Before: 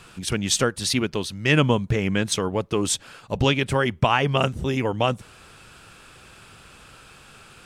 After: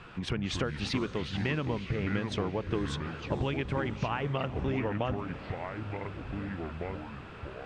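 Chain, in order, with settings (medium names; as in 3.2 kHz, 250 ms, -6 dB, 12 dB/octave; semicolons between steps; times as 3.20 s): low-pass 2.5 kHz 12 dB/octave; compression, threshold -29 dBFS, peak gain reduction 15.5 dB; on a send: echo that smears into a reverb 502 ms, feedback 64%, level -15 dB; on the sum: ever faster or slower copies 129 ms, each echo -5 st, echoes 2, each echo -6 dB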